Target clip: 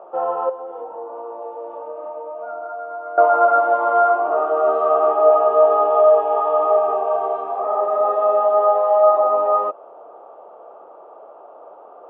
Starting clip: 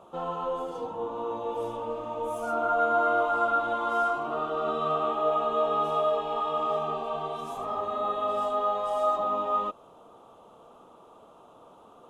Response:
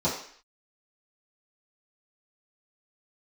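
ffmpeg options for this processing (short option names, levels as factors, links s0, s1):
-filter_complex "[0:a]equalizer=f=770:w=0.92:g=14,asettb=1/sr,asplit=3[s0][s1][s2];[s0]atrim=end=0.494[s3];[s1]atrim=start=0.49:end=3.18,asetpts=PTS-STARTPTS,afade=t=in:d=0.004:c=qsin,afade=t=out:st=2.686:d=0.004:c=qsin,acompressor=threshold=0.0355:ratio=12[s4];[s2]atrim=start=3.176[s5];[s3][s4]acrossfade=d=0.004:c1=hsin:c2=qsin[s6];[s6][s5]acrossfade=d=0.004:c1=qsin:c2=hsin,highpass=f=240:w=0.5412,highpass=f=240:w=1.3066,equalizer=f=240:t=q:w=4:g=-10,equalizer=f=390:t=q:w=4:g=4,equalizer=f=570:t=q:w=4:g=5,equalizer=f=980:t=q:w=4:g=-5,equalizer=f=1500:t=q:w=4:g=3,lowpass=f=2200:w=0.5412,lowpass=f=2200:w=1.3066"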